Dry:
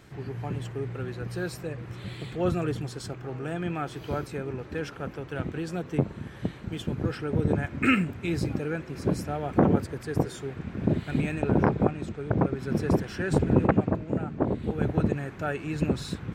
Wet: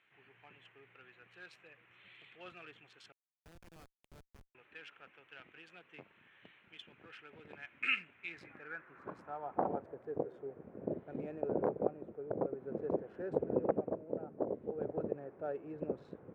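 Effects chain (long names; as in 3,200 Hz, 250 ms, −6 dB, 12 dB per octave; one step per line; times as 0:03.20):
adaptive Wiener filter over 9 samples
band-pass filter sweep 2,700 Hz → 520 Hz, 0:08.08–0:10.15
0:03.12–0:04.55: comparator with hysteresis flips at −43.5 dBFS
level −4 dB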